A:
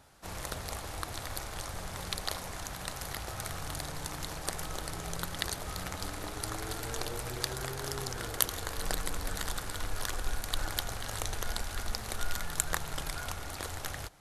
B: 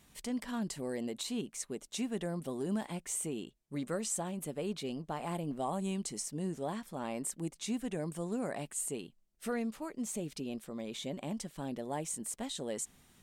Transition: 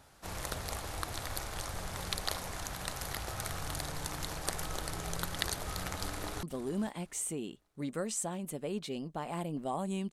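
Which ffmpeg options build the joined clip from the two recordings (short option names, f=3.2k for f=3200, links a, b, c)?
-filter_complex "[0:a]apad=whole_dur=10.12,atrim=end=10.12,atrim=end=6.432[a];[1:a]atrim=start=2.368:end=6.06[b];[a][b]acrossfade=d=0.004:c1=hsin:c2=hsin,asplit=2[c][d];[d]afade=t=in:st=6.04:d=0.01,afade=t=out:st=6.43:d=0.01,aecho=0:1:460|920|1380:0.177828|0.044457|0.0111142[e];[c][e]amix=inputs=2:normalize=0"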